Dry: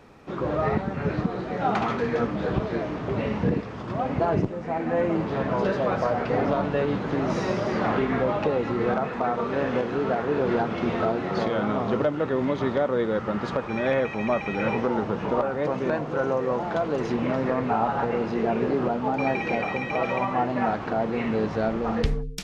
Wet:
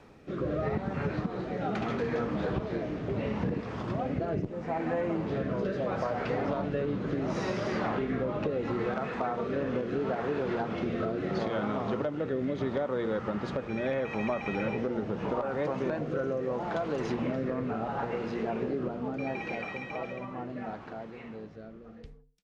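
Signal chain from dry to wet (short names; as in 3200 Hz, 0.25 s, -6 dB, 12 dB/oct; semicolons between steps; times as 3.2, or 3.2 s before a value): ending faded out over 6.10 s; de-hum 237.2 Hz, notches 7; rotary speaker horn 0.75 Hz; compressor, threshold -27 dBFS, peak gain reduction 8 dB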